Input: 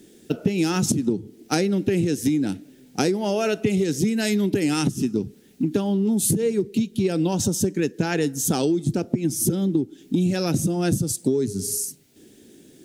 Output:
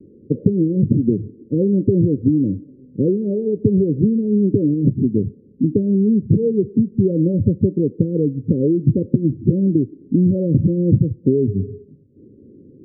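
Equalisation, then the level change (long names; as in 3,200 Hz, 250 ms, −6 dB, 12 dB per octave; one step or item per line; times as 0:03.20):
Chebyshev low-pass filter 570 Hz, order 10
parametric band 99 Hz +9 dB 1.4 octaves
+4.0 dB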